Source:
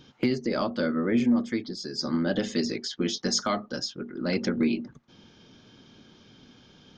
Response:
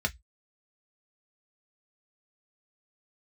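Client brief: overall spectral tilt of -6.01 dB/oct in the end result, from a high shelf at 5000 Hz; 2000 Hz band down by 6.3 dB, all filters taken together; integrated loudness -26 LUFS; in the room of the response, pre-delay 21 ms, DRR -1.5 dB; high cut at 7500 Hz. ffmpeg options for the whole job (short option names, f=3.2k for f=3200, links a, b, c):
-filter_complex "[0:a]lowpass=7.5k,equalizer=f=2k:t=o:g=-7,highshelf=f=5k:g=-9,asplit=2[a][b];[1:a]atrim=start_sample=2205,adelay=21[c];[b][c]afir=irnorm=-1:irlink=0,volume=-5.5dB[d];[a][d]amix=inputs=2:normalize=0,volume=-1dB"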